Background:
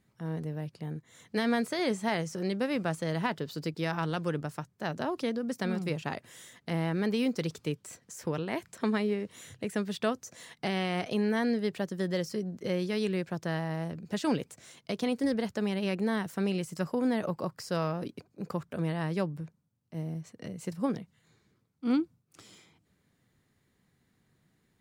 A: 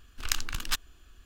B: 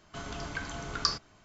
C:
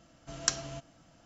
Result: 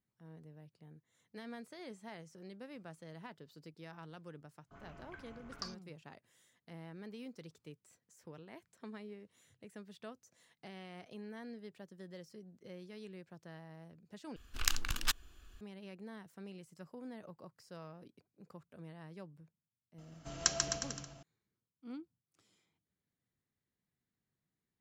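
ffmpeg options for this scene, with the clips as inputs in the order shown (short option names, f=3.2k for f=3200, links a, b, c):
-filter_complex "[0:a]volume=-19.5dB[a];[2:a]afwtdn=0.00631[b];[3:a]aecho=1:1:140|259|360.2|446.1|519.2|581.3:0.631|0.398|0.251|0.158|0.1|0.0631[c];[a]asplit=2[d][e];[d]atrim=end=14.364[f];[1:a]atrim=end=1.25,asetpts=PTS-STARTPTS,volume=-3dB[g];[e]atrim=start=15.606[h];[b]atrim=end=1.44,asetpts=PTS-STARTPTS,volume=-16dB,afade=t=in:d=0.004:c=hsin,afade=t=out:st=1.436:d=0.004:c=hsin,adelay=201537S[i];[c]atrim=end=1.25,asetpts=PTS-STARTPTS,volume=-2.5dB,afade=t=in:d=0.004:c=hsin,afade=t=out:st=1.246:d=0.004:c=hsin,adelay=19980[j];[f][g]acrossfade=d=0.004:c1=hsin:c2=hsin[k];[k][h]acrossfade=d=0.004:c1=hsin:c2=hsin[l];[l][i][j]amix=inputs=3:normalize=0"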